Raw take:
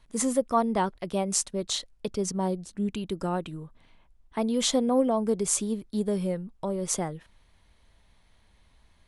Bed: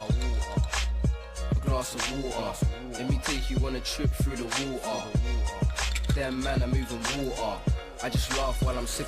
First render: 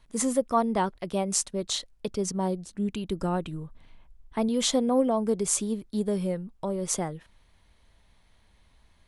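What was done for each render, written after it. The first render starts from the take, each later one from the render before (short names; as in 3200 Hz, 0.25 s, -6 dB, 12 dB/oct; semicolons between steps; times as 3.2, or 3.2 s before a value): 3.09–4.49 low shelf 120 Hz +8 dB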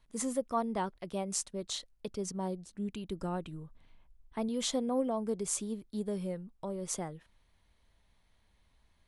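gain -8 dB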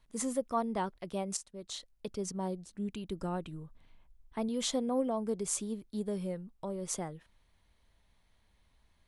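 1.37–2.09 fade in, from -13 dB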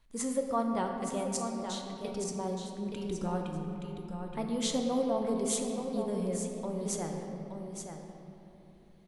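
on a send: echo 0.873 s -7.5 dB; on the sum: shoebox room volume 160 m³, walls hard, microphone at 0.33 m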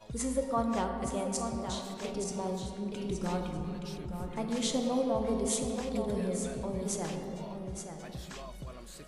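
add bed -17 dB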